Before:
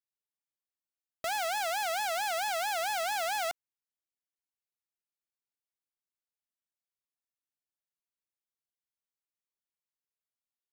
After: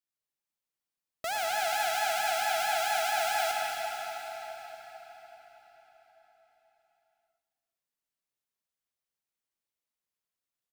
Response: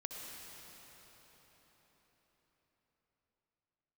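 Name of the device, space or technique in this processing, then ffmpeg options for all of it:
cave: -filter_complex "[0:a]aecho=1:1:388:0.141[a];[1:a]atrim=start_sample=2205[b];[a][b]afir=irnorm=-1:irlink=0,volume=4dB"

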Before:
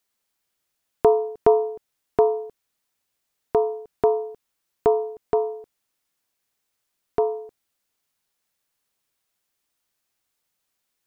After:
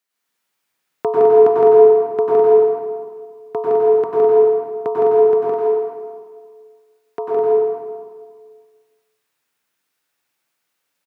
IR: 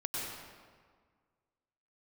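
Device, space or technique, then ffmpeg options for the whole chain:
stadium PA: -filter_complex "[0:a]highpass=f=130:w=0.5412,highpass=f=130:w=1.3066,equalizer=f=1.8k:t=o:w=1.6:g=5,aecho=1:1:163.3|207:0.794|0.562[a];[1:a]atrim=start_sample=2205[b];[a][b]afir=irnorm=-1:irlink=0,asettb=1/sr,asplit=3[c][d][e];[c]atrim=end=5.534[f];[d]atrim=start=5.53:end=7.37,asetpts=PTS-STARTPTS,afade=t=in:d=0.004:c=qsin,afade=t=out:st=1.836:d=0.004:c=qsin,highpass=f=230:p=1[g];[e]atrim=start=7.366[h];[f][g]acrossfade=d=0.004:c1=hsin:c2=qsin[i];[i][h]acrossfade=d=0.004:c1=qsin:c2=hsin,volume=-2.5dB"

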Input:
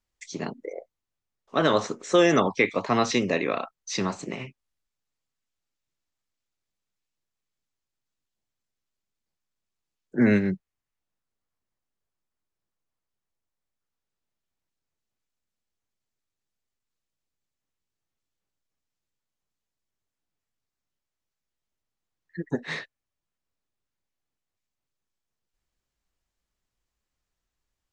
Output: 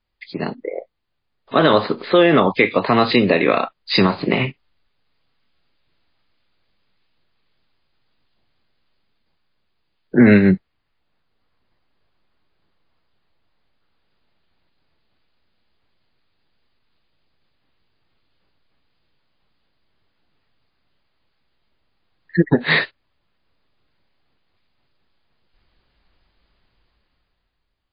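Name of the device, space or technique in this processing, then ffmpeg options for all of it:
low-bitrate web radio: -af "dynaudnorm=f=160:g=13:m=13dB,alimiter=limit=-10dB:level=0:latency=1:release=298,volume=7.5dB" -ar 11025 -c:a libmp3lame -b:a 24k

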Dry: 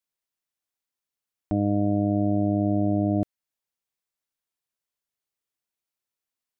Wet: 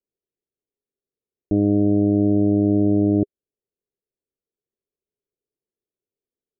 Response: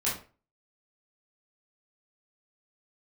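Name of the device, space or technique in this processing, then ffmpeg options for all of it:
under water: -af "lowpass=f=530:w=0.5412,lowpass=f=530:w=1.3066,equalizer=f=410:t=o:w=0.52:g=12,volume=3.5dB"

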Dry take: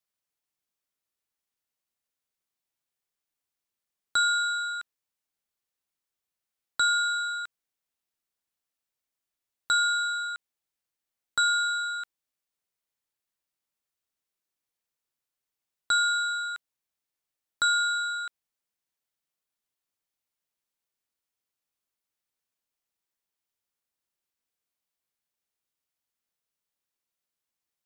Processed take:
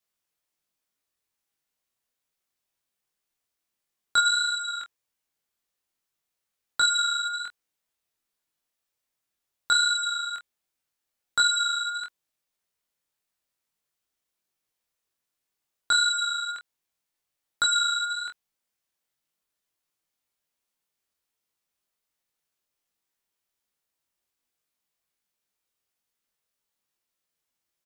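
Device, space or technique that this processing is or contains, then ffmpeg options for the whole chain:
double-tracked vocal: -filter_complex "[0:a]asplit=2[a][b];[b]adelay=25,volume=-8dB[c];[a][c]amix=inputs=2:normalize=0,flanger=delay=18.5:depth=4.9:speed=1.3,volume=6.5dB"

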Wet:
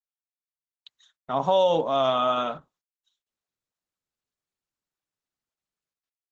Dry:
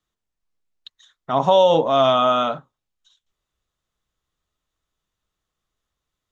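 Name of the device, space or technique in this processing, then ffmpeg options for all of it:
video call: -af "highpass=120,dynaudnorm=f=100:g=11:m=4dB,agate=range=-13dB:threshold=-52dB:ratio=16:detection=peak,volume=-8dB" -ar 48000 -c:a libopus -b:a 12k

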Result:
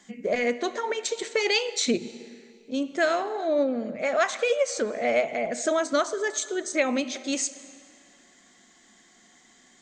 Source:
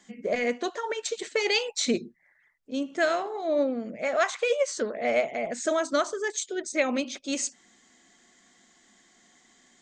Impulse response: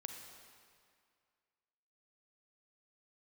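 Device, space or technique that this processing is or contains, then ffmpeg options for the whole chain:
ducked reverb: -filter_complex "[0:a]asplit=3[a][b][c];[1:a]atrim=start_sample=2205[d];[b][d]afir=irnorm=-1:irlink=0[e];[c]apad=whole_len=432624[f];[e][f]sidechaincompress=threshold=-28dB:ratio=8:attack=5.5:release=180,volume=-3.5dB[g];[a][g]amix=inputs=2:normalize=0"

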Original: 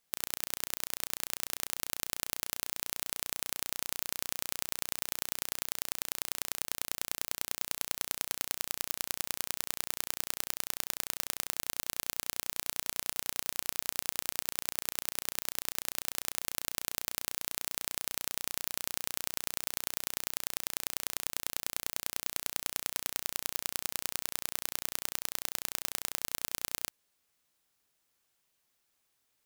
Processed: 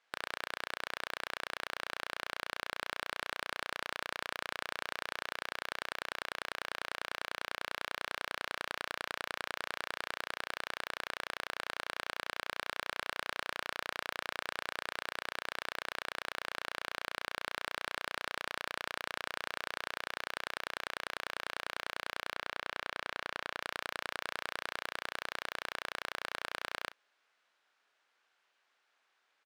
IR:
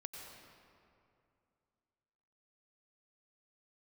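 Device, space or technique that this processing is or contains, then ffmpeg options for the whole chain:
megaphone: -filter_complex "[0:a]highpass=550,lowpass=3k,equalizer=f=1.5k:t=o:w=0.39:g=5,asoftclip=type=hard:threshold=-29dB,asplit=2[a][b];[b]adelay=35,volume=-12.5dB[c];[a][c]amix=inputs=2:normalize=0,asettb=1/sr,asplit=3[d][e][f];[d]atrim=end=22.334[g];[e]atrim=start=22.33:end=23.61,asetpts=PTS-STARTPTS,afade=t=in:d=0.004:c=qsin,afade=t=out:st=1.276:d=0.004:c=qsin,highshelf=f=6.7k:g=-8.5[h];[f]atrim=start=23.606[i];[g][h]acrossfade=d=0.004:c1=hsin:c2=qsin[j];[j][i]acrossfade=d=0.004:c1=qsin:c2=hsin,volume=7.5dB"

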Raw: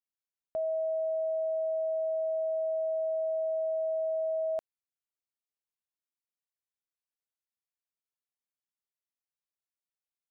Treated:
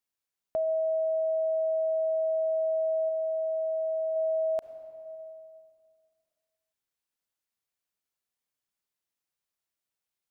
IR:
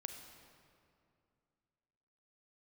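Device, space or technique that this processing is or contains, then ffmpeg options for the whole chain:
compressed reverb return: -filter_complex "[0:a]asplit=2[a][b];[1:a]atrim=start_sample=2205[c];[b][c]afir=irnorm=-1:irlink=0,acompressor=threshold=-39dB:ratio=6,volume=3dB[d];[a][d]amix=inputs=2:normalize=0,asettb=1/sr,asplit=3[e][f][g];[e]atrim=end=3.074[h];[f]atrim=start=3.07:end=4.16,asetpts=PTS-STARTPTS,afade=t=in:d=0.004:c=qsin,afade=t=out:st=1.086:d=0.004:c=qsin,asplit=2[i][j];[j]adelay=18,volume=-12.5dB[k];[i][k]amix=inputs=2:normalize=0,atrim=end_sample=48069[l];[g]atrim=start=4.156[m];[h][l]acrossfade=d=0.004:c1=hsin:c2=qsin[n];[n][m]acrossfade=d=0.004:c1=qsin:c2=hsin"

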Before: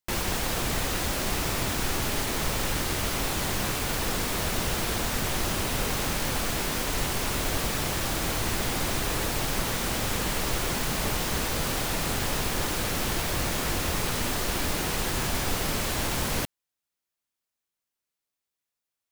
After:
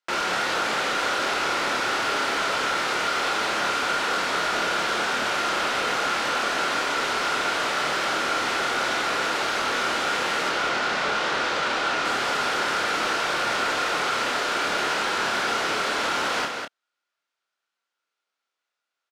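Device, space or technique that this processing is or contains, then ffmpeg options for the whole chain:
intercom: -filter_complex "[0:a]asettb=1/sr,asplit=3[a][b][c];[a]atrim=end=10.494[d];[b]atrim=start=10.49:end=12.05,asetpts=PTS-STARTPTS,afade=t=in:d=0.004:c=qsin,afade=t=out:st=1.556:d=0.004:c=qsin,lowpass=6k[e];[c]atrim=start=12.046[f];[d][e]acrossfade=d=0.004:c1=hsin:c2=qsin[g];[g][f]acrossfade=d=0.004:c1=qsin:c2=hsin,highpass=420,lowpass=4.4k,equalizer=f=1.4k:t=o:w=0.21:g=11,aecho=1:1:55.39|198.3:0.282|0.447,asoftclip=type=tanh:threshold=-25dB,asplit=2[h][i];[i]adelay=28,volume=-6dB[j];[h][j]amix=inputs=2:normalize=0,volume=6dB"

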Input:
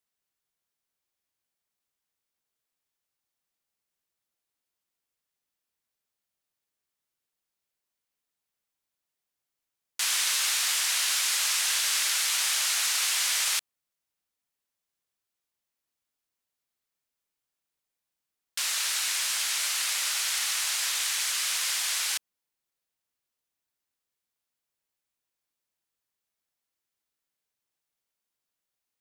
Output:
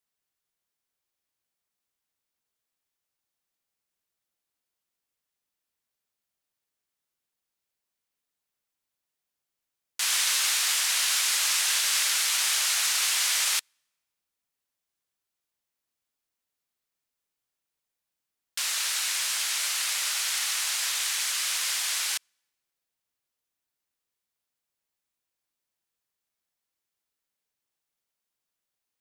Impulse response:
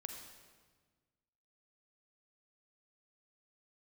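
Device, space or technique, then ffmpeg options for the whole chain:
keyed gated reverb: -filter_complex "[0:a]asplit=3[a][b][c];[1:a]atrim=start_sample=2205[d];[b][d]afir=irnorm=-1:irlink=0[e];[c]apad=whole_len=1279017[f];[e][f]sidechaingate=range=-33dB:threshold=-24dB:ratio=16:detection=peak,volume=0dB[g];[a][g]amix=inputs=2:normalize=0"

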